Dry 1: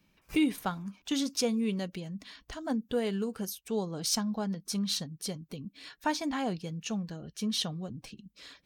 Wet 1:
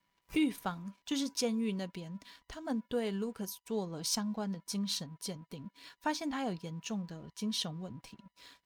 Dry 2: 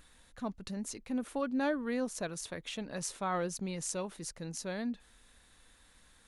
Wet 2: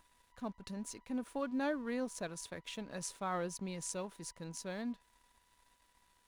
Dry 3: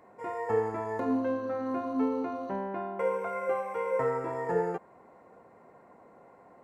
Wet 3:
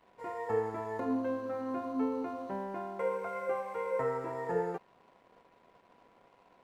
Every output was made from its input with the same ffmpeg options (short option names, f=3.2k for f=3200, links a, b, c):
-af "aeval=exprs='val(0)+0.00126*sin(2*PI*980*n/s)':c=same,aeval=exprs='sgn(val(0))*max(abs(val(0))-0.00119,0)':c=same,volume=-3.5dB"